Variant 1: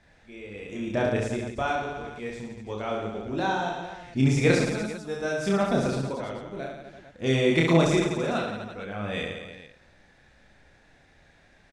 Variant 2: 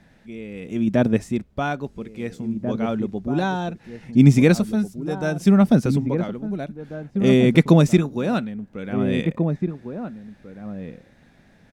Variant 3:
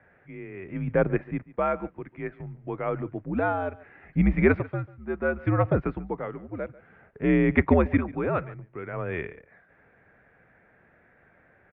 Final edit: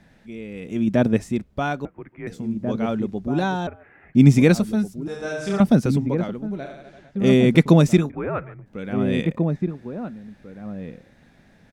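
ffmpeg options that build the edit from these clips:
-filter_complex "[2:a]asplit=3[s0][s1][s2];[0:a]asplit=2[s3][s4];[1:a]asplit=6[s5][s6][s7][s8][s9][s10];[s5]atrim=end=1.852[s11];[s0]atrim=start=1.848:end=2.272[s12];[s6]atrim=start=2.268:end=3.672[s13];[s1]atrim=start=3.668:end=4.152[s14];[s7]atrim=start=4.148:end=5.082[s15];[s3]atrim=start=5.078:end=5.602[s16];[s8]atrim=start=5.598:end=6.71[s17];[s4]atrim=start=6.47:end=7.26[s18];[s9]atrim=start=7.02:end=8.102[s19];[s2]atrim=start=8.098:end=8.662[s20];[s10]atrim=start=8.658[s21];[s11][s12]acrossfade=d=0.004:c1=hsin:c2=hsin[s22];[s22][s13]acrossfade=d=0.004:c1=hsin:c2=hsin[s23];[s23][s14]acrossfade=d=0.004:c1=hsin:c2=hsin[s24];[s24][s15]acrossfade=d=0.004:c1=hsin:c2=hsin[s25];[s25][s16]acrossfade=d=0.004:c1=hsin:c2=hsin[s26];[s26][s17]acrossfade=d=0.004:c1=hsin:c2=hsin[s27];[s27][s18]acrossfade=d=0.24:c1=tri:c2=tri[s28];[s28][s19]acrossfade=d=0.24:c1=tri:c2=tri[s29];[s29][s20]acrossfade=d=0.004:c1=hsin:c2=hsin[s30];[s30][s21]acrossfade=d=0.004:c1=hsin:c2=hsin"

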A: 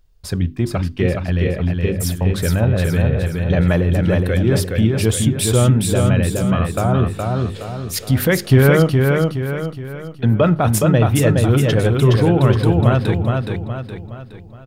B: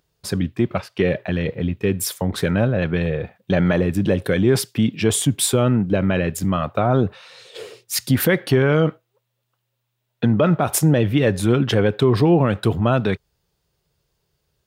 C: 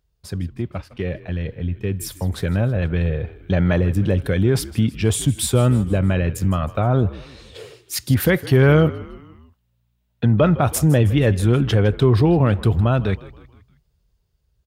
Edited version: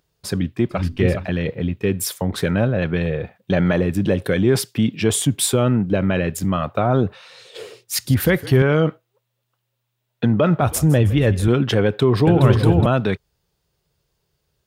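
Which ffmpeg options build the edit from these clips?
-filter_complex "[0:a]asplit=2[s0][s1];[2:a]asplit=2[s2][s3];[1:a]asplit=5[s4][s5][s6][s7][s8];[s4]atrim=end=0.85[s9];[s0]atrim=start=0.69:end=1.29[s10];[s5]atrim=start=1.13:end=8.052[s11];[s2]atrim=start=8.048:end=8.622[s12];[s6]atrim=start=8.618:end=10.612[s13];[s3]atrim=start=10.608:end=11.482[s14];[s7]atrim=start=11.478:end=12.272[s15];[s1]atrim=start=12.268:end=12.862[s16];[s8]atrim=start=12.858[s17];[s9][s10]acrossfade=d=0.16:c1=tri:c2=tri[s18];[s18][s11]acrossfade=d=0.16:c1=tri:c2=tri[s19];[s19][s12]acrossfade=d=0.004:c1=hsin:c2=hsin[s20];[s20][s13]acrossfade=d=0.004:c1=hsin:c2=hsin[s21];[s21][s14]acrossfade=d=0.004:c1=hsin:c2=hsin[s22];[s22][s15]acrossfade=d=0.004:c1=hsin:c2=hsin[s23];[s23][s16]acrossfade=d=0.004:c1=hsin:c2=hsin[s24];[s24][s17]acrossfade=d=0.004:c1=hsin:c2=hsin"

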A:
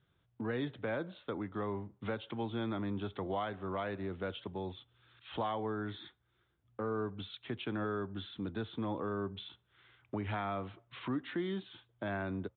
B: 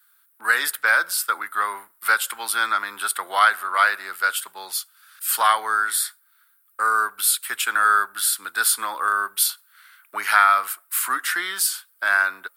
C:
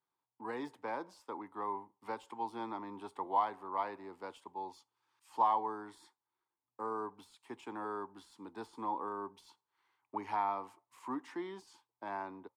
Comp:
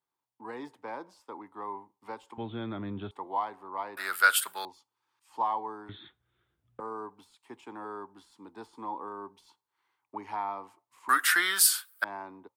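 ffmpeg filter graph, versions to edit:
-filter_complex "[0:a]asplit=2[s0][s1];[1:a]asplit=2[s2][s3];[2:a]asplit=5[s4][s5][s6][s7][s8];[s4]atrim=end=2.382[s9];[s0]atrim=start=2.378:end=3.112[s10];[s5]atrim=start=3.108:end=3.972[s11];[s2]atrim=start=3.968:end=4.652[s12];[s6]atrim=start=4.648:end=5.892[s13];[s1]atrim=start=5.888:end=6.802[s14];[s7]atrim=start=6.798:end=11.092[s15];[s3]atrim=start=11.088:end=12.042[s16];[s8]atrim=start=12.038[s17];[s9][s10]acrossfade=d=0.004:c1=hsin:c2=hsin[s18];[s18][s11]acrossfade=d=0.004:c1=hsin:c2=hsin[s19];[s19][s12]acrossfade=d=0.004:c1=hsin:c2=hsin[s20];[s20][s13]acrossfade=d=0.004:c1=hsin:c2=hsin[s21];[s21][s14]acrossfade=d=0.004:c1=hsin:c2=hsin[s22];[s22][s15]acrossfade=d=0.004:c1=hsin:c2=hsin[s23];[s23][s16]acrossfade=d=0.004:c1=hsin:c2=hsin[s24];[s24][s17]acrossfade=d=0.004:c1=hsin:c2=hsin"

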